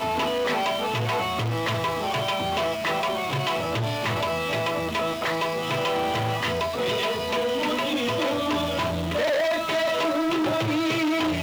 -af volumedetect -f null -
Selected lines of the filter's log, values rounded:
mean_volume: -25.1 dB
max_volume: -15.7 dB